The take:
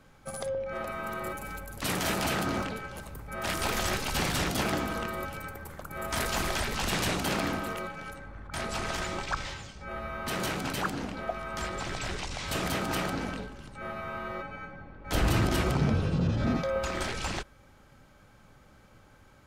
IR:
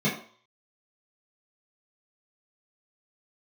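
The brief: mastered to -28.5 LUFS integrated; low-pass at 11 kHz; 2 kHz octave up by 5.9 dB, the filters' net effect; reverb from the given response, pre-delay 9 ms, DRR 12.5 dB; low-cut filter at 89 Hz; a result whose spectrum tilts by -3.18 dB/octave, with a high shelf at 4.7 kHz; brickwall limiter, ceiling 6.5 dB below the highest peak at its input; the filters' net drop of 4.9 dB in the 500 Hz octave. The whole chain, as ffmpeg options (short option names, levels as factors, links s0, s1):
-filter_complex "[0:a]highpass=89,lowpass=11000,equalizer=f=500:t=o:g=-7,equalizer=f=2000:t=o:g=6.5,highshelf=f=4700:g=8.5,alimiter=limit=0.106:level=0:latency=1,asplit=2[s0][s1];[1:a]atrim=start_sample=2205,adelay=9[s2];[s1][s2]afir=irnorm=-1:irlink=0,volume=0.0562[s3];[s0][s3]amix=inputs=2:normalize=0,volume=1.26"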